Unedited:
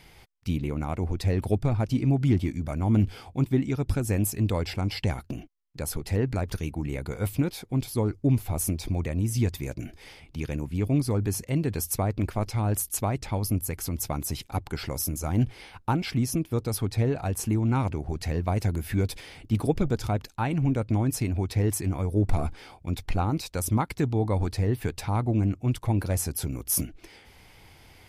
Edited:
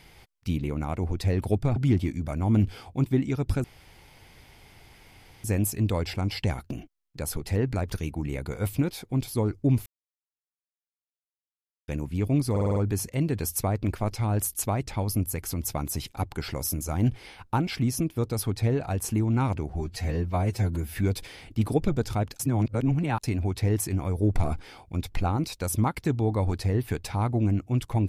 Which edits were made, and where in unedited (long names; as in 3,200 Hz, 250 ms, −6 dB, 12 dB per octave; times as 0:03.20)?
0:01.76–0:02.16: remove
0:04.04: splice in room tone 1.80 s
0:08.46–0:10.48: silence
0:11.11: stutter 0.05 s, 6 plays
0:18.05–0:18.88: time-stretch 1.5×
0:20.33–0:21.17: reverse